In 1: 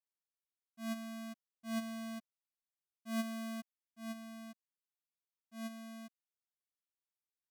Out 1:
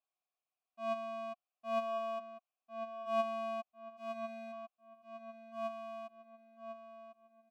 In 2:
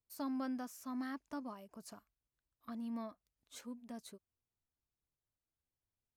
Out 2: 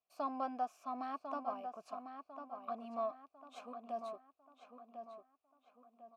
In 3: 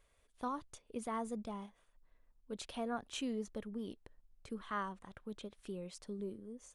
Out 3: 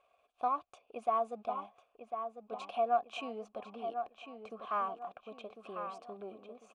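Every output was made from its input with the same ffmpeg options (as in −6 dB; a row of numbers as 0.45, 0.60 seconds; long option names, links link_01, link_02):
-filter_complex "[0:a]aeval=exprs='if(lt(val(0),0),0.708*val(0),val(0))':channel_layout=same,asplit=3[link_01][link_02][link_03];[link_01]bandpass=frequency=730:width_type=q:width=8,volume=0dB[link_04];[link_02]bandpass=frequency=1090:width_type=q:width=8,volume=-6dB[link_05];[link_03]bandpass=frequency=2440:width_type=q:width=8,volume=-9dB[link_06];[link_04][link_05][link_06]amix=inputs=3:normalize=0,asplit=2[link_07][link_08];[link_08]adelay=1049,lowpass=frequency=3300:poles=1,volume=-7.5dB,asplit=2[link_09][link_10];[link_10]adelay=1049,lowpass=frequency=3300:poles=1,volume=0.4,asplit=2[link_11][link_12];[link_12]adelay=1049,lowpass=frequency=3300:poles=1,volume=0.4,asplit=2[link_13][link_14];[link_14]adelay=1049,lowpass=frequency=3300:poles=1,volume=0.4,asplit=2[link_15][link_16];[link_16]adelay=1049,lowpass=frequency=3300:poles=1,volume=0.4[link_17];[link_07][link_09][link_11][link_13][link_15][link_17]amix=inputs=6:normalize=0,volume=17dB"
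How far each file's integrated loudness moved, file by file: +2.5, +1.0, +5.5 LU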